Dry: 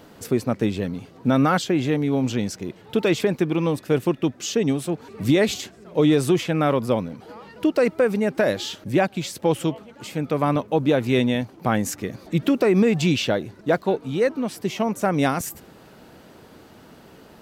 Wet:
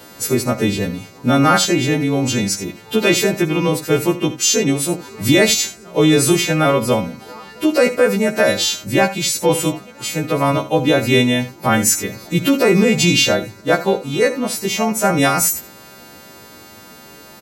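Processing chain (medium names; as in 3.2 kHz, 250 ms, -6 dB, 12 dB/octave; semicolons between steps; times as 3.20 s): partials quantised in pitch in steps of 2 st; early reflections 56 ms -16.5 dB, 78 ms -14.5 dB; trim +5.5 dB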